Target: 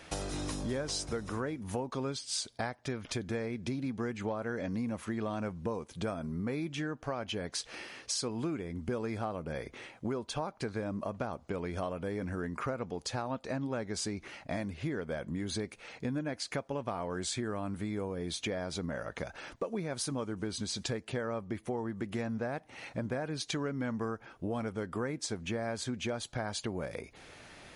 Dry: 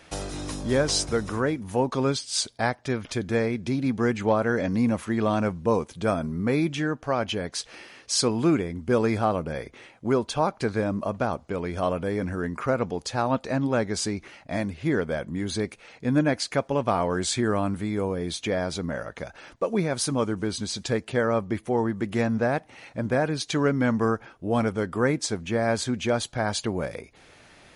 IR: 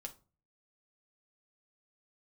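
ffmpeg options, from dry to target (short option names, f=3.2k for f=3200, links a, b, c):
-af "acompressor=threshold=-33dB:ratio=6"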